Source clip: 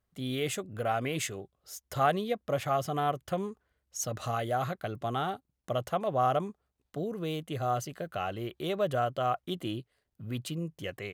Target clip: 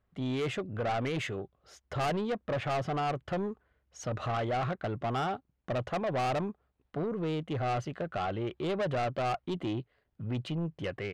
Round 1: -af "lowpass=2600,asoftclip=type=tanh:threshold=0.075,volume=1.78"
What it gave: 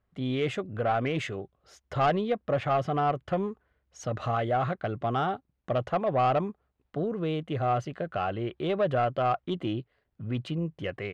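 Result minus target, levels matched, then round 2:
saturation: distortion -9 dB
-af "lowpass=2600,asoftclip=type=tanh:threshold=0.0237,volume=1.78"

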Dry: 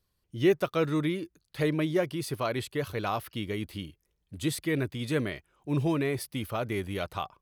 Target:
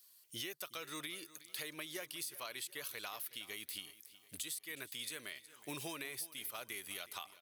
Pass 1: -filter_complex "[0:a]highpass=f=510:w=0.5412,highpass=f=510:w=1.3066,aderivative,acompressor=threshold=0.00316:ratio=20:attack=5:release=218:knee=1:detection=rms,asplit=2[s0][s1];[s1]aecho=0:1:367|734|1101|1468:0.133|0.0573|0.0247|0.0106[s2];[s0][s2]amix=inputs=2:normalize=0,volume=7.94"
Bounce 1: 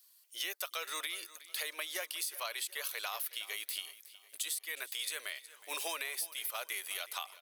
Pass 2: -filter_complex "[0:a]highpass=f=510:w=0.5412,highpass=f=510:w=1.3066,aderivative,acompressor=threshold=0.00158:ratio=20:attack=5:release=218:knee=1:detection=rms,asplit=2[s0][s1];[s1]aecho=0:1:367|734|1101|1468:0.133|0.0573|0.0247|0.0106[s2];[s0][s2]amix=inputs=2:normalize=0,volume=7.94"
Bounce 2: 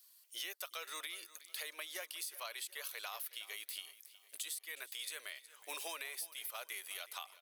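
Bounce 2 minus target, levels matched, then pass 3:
500 Hz band -3.0 dB
-filter_complex "[0:a]aderivative,acompressor=threshold=0.00158:ratio=20:attack=5:release=218:knee=1:detection=rms,asplit=2[s0][s1];[s1]aecho=0:1:367|734|1101|1468:0.133|0.0573|0.0247|0.0106[s2];[s0][s2]amix=inputs=2:normalize=0,volume=7.94"

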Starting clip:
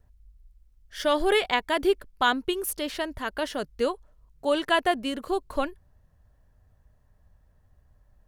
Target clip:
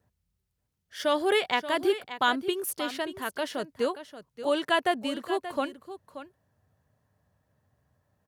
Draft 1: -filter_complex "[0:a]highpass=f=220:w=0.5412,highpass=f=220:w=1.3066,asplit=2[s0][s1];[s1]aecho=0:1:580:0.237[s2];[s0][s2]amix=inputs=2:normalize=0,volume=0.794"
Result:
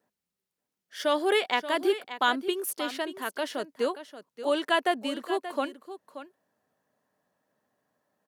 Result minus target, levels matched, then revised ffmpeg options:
125 Hz band -8.0 dB
-filter_complex "[0:a]highpass=f=100:w=0.5412,highpass=f=100:w=1.3066,asplit=2[s0][s1];[s1]aecho=0:1:580:0.237[s2];[s0][s2]amix=inputs=2:normalize=0,volume=0.794"

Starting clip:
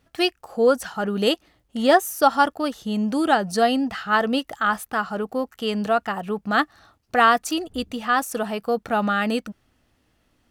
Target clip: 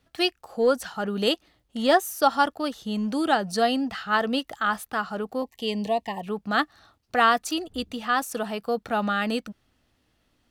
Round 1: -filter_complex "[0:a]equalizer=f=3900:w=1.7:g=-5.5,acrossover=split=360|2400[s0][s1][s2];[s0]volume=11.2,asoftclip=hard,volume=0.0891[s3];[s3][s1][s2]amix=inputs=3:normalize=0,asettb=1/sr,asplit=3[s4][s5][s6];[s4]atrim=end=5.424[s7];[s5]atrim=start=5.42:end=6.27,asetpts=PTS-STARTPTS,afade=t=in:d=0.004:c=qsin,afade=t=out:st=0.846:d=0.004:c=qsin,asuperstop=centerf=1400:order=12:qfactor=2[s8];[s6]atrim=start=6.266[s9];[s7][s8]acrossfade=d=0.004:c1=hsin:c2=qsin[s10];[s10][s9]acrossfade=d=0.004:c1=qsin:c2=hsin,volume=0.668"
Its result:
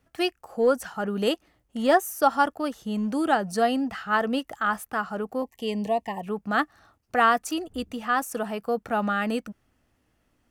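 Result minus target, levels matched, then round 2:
4 kHz band -5.5 dB
-filter_complex "[0:a]equalizer=f=3900:w=1.7:g=4,acrossover=split=360|2400[s0][s1][s2];[s0]volume=11.2,asoftclip=hard,volume=0.0891[s3];[s3][s1][s2]amix=inputs=3:normalize=0,asettb=1/sr,asplit=3[s4][s5][s6];[s4]atrim=end=5.424[s7];[s5]atrim=start=5.42:end=6.27,asetpts=PTS-STARTPTS,afade=t=in:d=0.004:c=qsin,afade=t=out:st=0.846:d=0.004:c=qsin,asuperstop=centerf=1400:order=12:qfactor=2[s8];[s6]atrim=start=6.266[s9];[s7][s8]acrossfade=d=0.004:c1=hsin:c2=qsin[s10];[s10][s9]acrossfade=d=0.004:c1=qsin:c2=hsin,volume=0.668"

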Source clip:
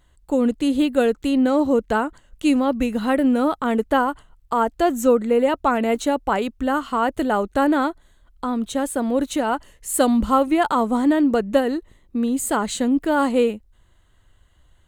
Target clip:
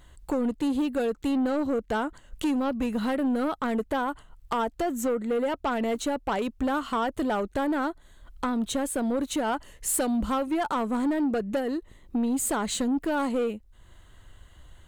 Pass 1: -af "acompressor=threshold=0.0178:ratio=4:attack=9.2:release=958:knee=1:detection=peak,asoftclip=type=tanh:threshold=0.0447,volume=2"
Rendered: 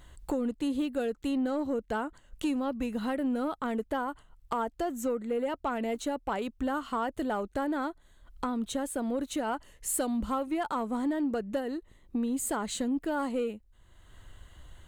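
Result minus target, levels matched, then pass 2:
compression: peak gain reduction +6.5 dB
-af "acompressor=threshold=0.0473:ratio=4:attack=9.2:release=958:knee=1:detection=peak,asoftclip=type=tanh:threshold=0.0447,volume=2"

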